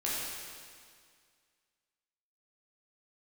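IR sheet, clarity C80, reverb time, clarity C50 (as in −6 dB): −0.5 dB, 2.0 s, −2.5 dB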